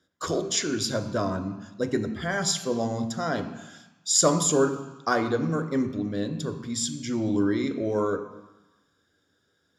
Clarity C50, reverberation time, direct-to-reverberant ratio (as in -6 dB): 10.5 dB, 1.1 s, 7.0 dB